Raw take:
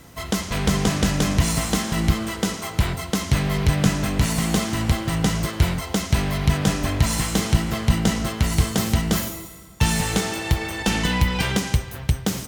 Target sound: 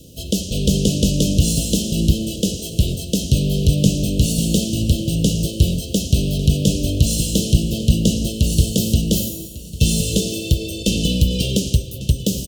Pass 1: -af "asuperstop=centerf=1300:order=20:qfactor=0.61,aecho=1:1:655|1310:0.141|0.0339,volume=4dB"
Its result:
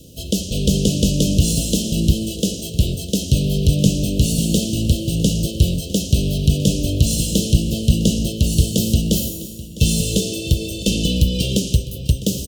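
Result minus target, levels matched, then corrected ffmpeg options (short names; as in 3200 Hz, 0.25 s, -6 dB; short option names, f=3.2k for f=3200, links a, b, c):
echo 0.494 s early
-af "asuperstop=centerf=1300:order=20:qfactor=0.61,aecho=1:1:1149|2298:0.141|0.0339,volume=4dB"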